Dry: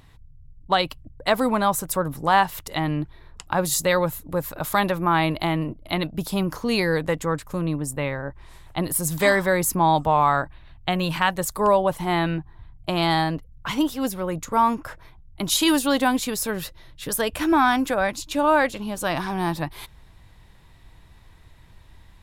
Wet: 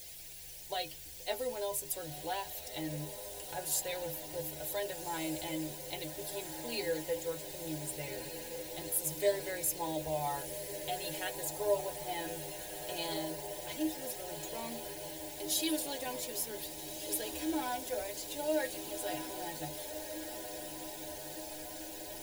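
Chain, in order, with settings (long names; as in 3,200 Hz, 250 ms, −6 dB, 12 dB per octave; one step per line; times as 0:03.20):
high-shelf EQ 9,800 Hz +7.5 dB
bit-depth reduction 6 bits, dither triangular
phaser with its sweep stopped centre 490 Hz, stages 4
mains hum 50 Hz, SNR 27 dB
stiff-string resonator 74 Hz, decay 0.29 s, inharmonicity 0.008
feedback delay with all-pass diffusion 1,571 ms, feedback 75%, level −9.5 dB
level −4.5 dB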